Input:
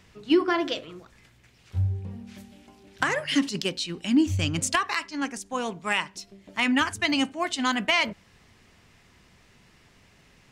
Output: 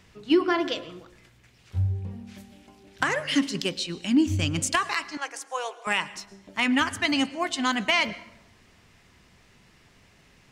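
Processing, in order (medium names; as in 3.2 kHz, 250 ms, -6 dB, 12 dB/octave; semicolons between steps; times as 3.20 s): 5.17–5.87 s: steep high-pass 470 Hz 36 dB/octave; plate-style reverb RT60 0.87 s, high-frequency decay 0.65×, pre-delay 95 ms, DRR 17 dB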